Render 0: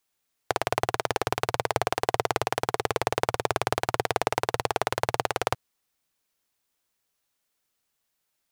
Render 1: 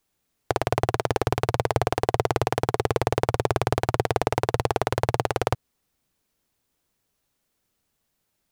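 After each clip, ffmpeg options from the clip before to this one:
-filter_complex "[0:a]lowshelf=f=470:g=12,asplit=2[s0][s1];[s1]alimiter=limit=0.316:level=0:latency=1:release=155,volume=1.33[s2];[s0][s2]amix=inputs=2:normalize=0,volume=0.501"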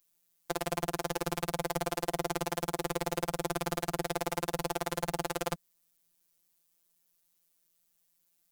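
-filter_complex "[0:a]acrossover=split=520|1000[s0][s1][s2];[s2]crystalizer=i=2.5:c=0[s3];[s0][s1][s3]amix=inputs=3:normalize=0,asoftclip=type=tanh:threshold=0.473,afftfilt=real='hypot(re,im)*cos(PI*b)':imag='0':win_size=1024:overlap=0.75,volume=0.531"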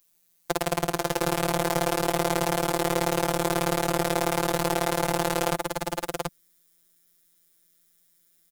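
-af "aecho=1:1:134|508|732:0.15|0.237|0.631,volume=2.24"

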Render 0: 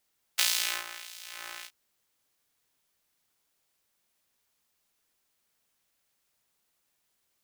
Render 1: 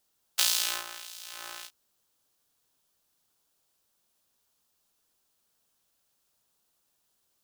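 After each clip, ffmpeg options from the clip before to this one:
-af "equalizer=f=2100:w=2.4:g=-8.5,volume=1.26"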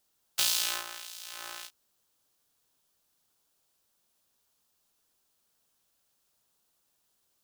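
-af "asoftclip=type=tanh:threshold=0.376"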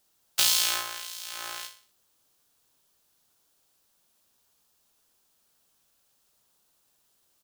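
-af "aecho=1:1:61|122|183|244:0.299|0.119|0.0478|0.0191,volume=1.68"

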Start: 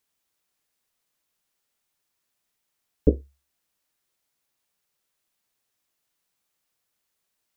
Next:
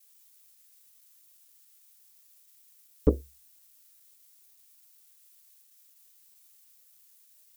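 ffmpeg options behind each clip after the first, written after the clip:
-af "crystalizer=i=8.5:c=0,anlmdn=0.000251,asoftclip=type=tanh:threshold=0.501,volume=0.75"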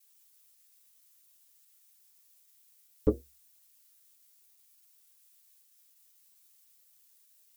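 -af "flanger=delay=5.4:depth=9.8:regen=24:speed=0.58:shape=triangular"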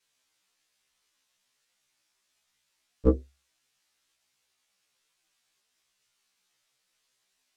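-af "adynamicsmooth=sensitivity=6:basefreq=4100,afftfilt=real='re*1.73*eq(mod(b,3),0)':imag='im*1.73*eq(mod(b,3),0)':win_size=2048:overlap=0.75,volume=2.51"

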